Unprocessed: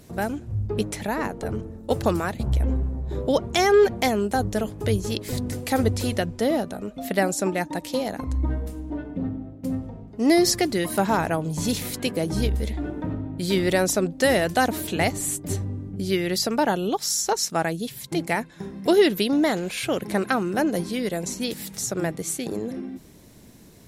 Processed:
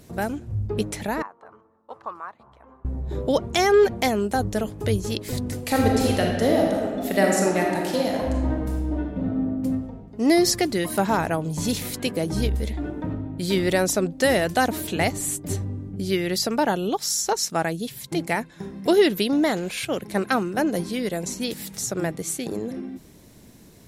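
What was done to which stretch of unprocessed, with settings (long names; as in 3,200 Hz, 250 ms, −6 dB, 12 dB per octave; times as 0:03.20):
0:01.22–0:02.85: resonant band-pass 1,100 Hz, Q 4.9
0:05.60–0:09.55: thrown reverb, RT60 1.7 s, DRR −1 dB
0:19.85–0:20.57: multiband upward and downward expander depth 100%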